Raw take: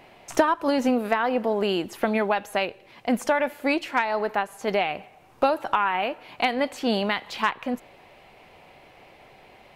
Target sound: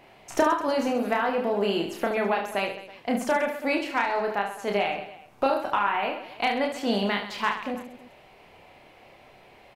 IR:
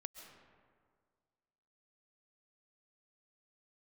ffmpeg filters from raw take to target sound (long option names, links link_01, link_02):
-af "aecho=1:1:30|72|130.8|213.1|328.4:0.631|0.398|0.251|0.158|0.1,volume=-3.5dB"